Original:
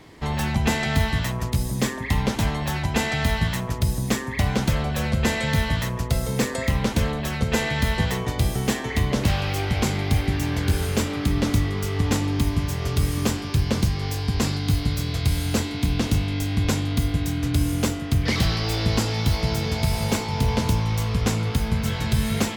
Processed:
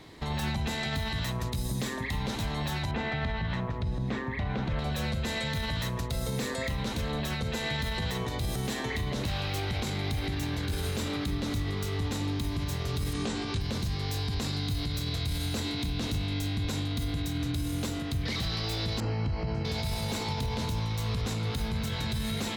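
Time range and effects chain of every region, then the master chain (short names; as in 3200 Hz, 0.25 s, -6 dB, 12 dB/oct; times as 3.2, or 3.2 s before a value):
2.91–4.79 LPF 2300 Hz + requantised 12-bit, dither none
13.13–13.61 steep low-pass 9200 Hz + tone controls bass -1 dB, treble -3 dB + doubler 18 ms -2 dB
19–19.65 Butterworth band-stop 3600 Hz, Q 4.5 + tape spacing loss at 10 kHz 32 dB
whole clip: bell 3900 Hz +9.5 dB 0.21 oct; limiter -20 dBFS; gain -3 dB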